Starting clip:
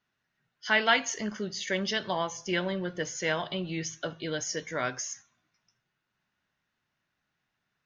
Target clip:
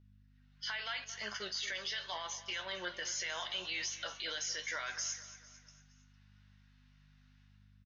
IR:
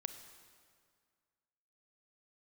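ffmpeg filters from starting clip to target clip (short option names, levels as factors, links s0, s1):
-filter_complex "[0:a]lowpass=f=5000:w=0.5412,lowpass=f=5000:w=1.3066,asettb=1/sr,asplit=3[s0][s1][s2];[s0]atrim=end=1.044[s3];[s1]atrim=start=1.04:end=3.07,asetpts=PTS-STARTPTS,afade=t=in:d=0.004:c=qsin,afade=t=out:st=2.026:d=0.004:c=qsin,agate=range=0.0224:threshold=0.0224:ratio=3:detection=peak[s4];[s2]atrim=start=3.066[s5];[s3][s4]acrossfade=d=0.004:c1=hsin:c2=qsin[s6];[s6][s5]acrossfade=d=0.004:c1=qsin:c2=hsin,highpass=980,aemphasis=mode=production:type=75fm,acompressor=threshold=0.0126:ratio=4,alimiter=level_in=3.55:limit=0.0631:level=0:latency=1:release=11,volume=0.282,dynaudnorm=f=140:g=7:m=5.31,aeval=exprs='val(0)+0.00251*(sin(2*PI*50*n/s)+sin(2*PI*2*50*n/s)/2+sin(2*PI*3*50*n/s)/3+sin(2*PI*4*50*n/s)/4+sin(2*PI*5*50*n/s)/5)':c=same,flanger=delay=9.4:depth=3.9:regen=58:speed=0.78:shape=triangular,aecho=1:1:227|454|681|908:0.178|0.0854|0.041|0.0197,volume=0.562"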